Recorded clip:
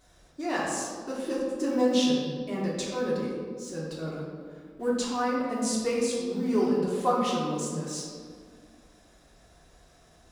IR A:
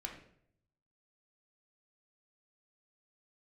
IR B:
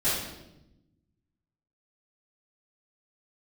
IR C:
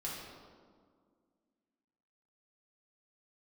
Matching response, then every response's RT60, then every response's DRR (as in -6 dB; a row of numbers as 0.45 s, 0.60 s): C; 0.65 s, 0.90 s, 1.9 s; 0.5 dB, -15.0 dB, -6.0 dB